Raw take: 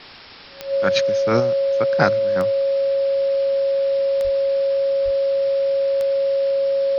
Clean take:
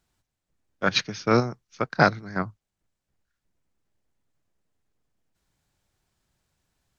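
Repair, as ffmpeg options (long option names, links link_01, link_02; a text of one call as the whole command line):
ffmpeg -i in.wav -filter_complex "[0:a]adeclick=threshold=4,bandreject=frequency=550:width=30,asplit=3[link_01][link_02][link_03];[link_01]afade=type=out:start_time=4.23:duration=0.02[link_04];[link_02]highpass=frequency=140:width=0.5412,highpass=frequency=140:width=1.3066,afade=type=in:start_time=4.23:duration=0.02,afade=type=out:start_time=4.35:duration=0.02[link_05];[link_03]afade=type=in:start_time=4.35:duration=0.02[link_06];[link_04][link_05][link_06]amix=inputs=3:normalize=0,asplit=3[link_07][link_08][link_09];[link_07]afade=type=out:start_time=5.04:duration=0.02[link_10];[link_08]highpass=frequency=140:width=0.5412,highpass=frequency=140:width=1.3066,afade=type=in:start_time=5.04:duration=0.02,afade=type=out:start_time=5.16:duration=0.02[link_11];[link_09]afade=type=in:start_time=5.16:duration=0.02[link_12];[link_10][link_11][link_12]amix=inputs=3:normalize=0,afftdn=noise_reduction=30:noise_floor=-24" out.wav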